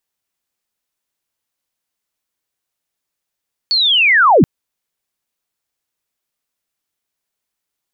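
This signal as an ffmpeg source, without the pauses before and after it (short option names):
-f lavfi -i "aevalsrc='pow(10,(-11.5+6.5*t/0.73)/20)*sin(2*PI*(4500*t-4390*t*t/(2*0.73)))':d=0.73:s=44100"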